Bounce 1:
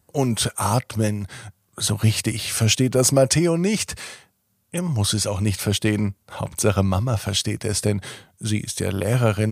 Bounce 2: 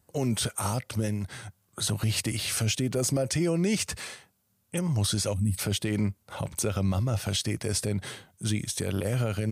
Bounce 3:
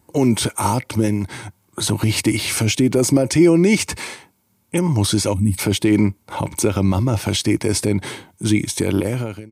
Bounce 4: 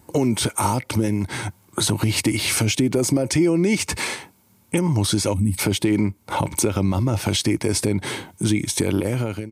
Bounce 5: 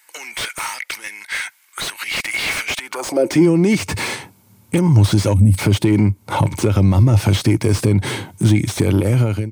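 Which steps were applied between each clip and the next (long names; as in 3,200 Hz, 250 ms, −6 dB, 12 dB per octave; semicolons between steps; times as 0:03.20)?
dynamic equaliser 990 Hz, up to −5 dB, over −37 dBFS, Q 1.8; gain on a spectral selection 0:05.33–0:05.58, 290–7,700 Hz −19 dB; brickwall limiter −14 dBFS, peak gain reduction 9 dB; level −3.5 dB
fade-out on the ending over 0.58 s; hollow resonant body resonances 310/910/2,200 Hz, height 11 dB, ringing for 25 ms; level +7 dB
downward compressor 2.5 to 1, threshold −27 dBFS, peak gain reduction 12 dB; level +6 dB
soft clipping −10.5 dBFS, distortion −22 dB; high-pass filter sweep 1,900 Hz → 100 Hz, 0:02.79–0:03.58; slew-rate limiting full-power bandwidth 200 Hz; level +4 dB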